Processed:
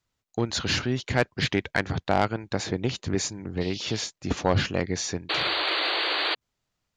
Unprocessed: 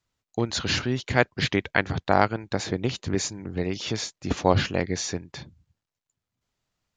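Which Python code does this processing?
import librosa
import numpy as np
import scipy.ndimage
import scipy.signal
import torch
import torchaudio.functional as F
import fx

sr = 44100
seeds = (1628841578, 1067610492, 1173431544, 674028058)

y = fx.dmg_noise_band(x, sr, seeds[0], low_hz=2600.0, high_hz=4900.0, level_db=-42.0, at=(3.6, 4.05), fade=0.02)
y = fx.spec_paint(y, sr, seeds[1], shape='noise', start_s=5.29, length_s=1.06, low_hz=290.0, high_hz=4700.0, level_db=-26.0)
y = 10.0 ** (-11.0 / 20.0) * np.tanh(y / 10.0 ** (-11.0 / 20.0))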